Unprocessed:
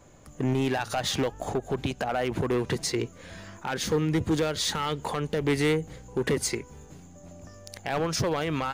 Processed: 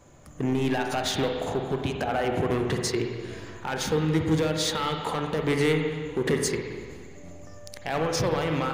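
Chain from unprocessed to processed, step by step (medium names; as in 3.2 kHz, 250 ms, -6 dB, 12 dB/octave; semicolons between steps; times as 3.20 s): transient shaper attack 0 dB, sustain -5 dB; spring tank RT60 1.9 s, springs 44/50/58 ms, chirp 40 ms, DRR 2.5 dB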